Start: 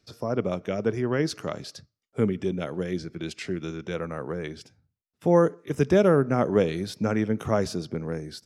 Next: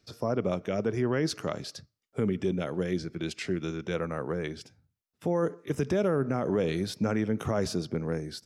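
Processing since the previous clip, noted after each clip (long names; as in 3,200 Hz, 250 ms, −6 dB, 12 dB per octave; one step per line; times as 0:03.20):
brickwall limiter −18 dBFS, peak gain reduction 10.5 dB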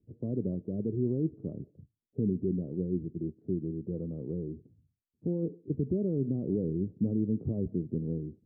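inverse Chebyshev low-pass filter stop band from 2,200 Hz, stop band 80 dB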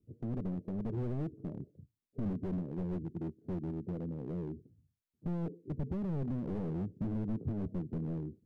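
slew-rate limiting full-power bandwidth 6.3 Hz
level −2 dB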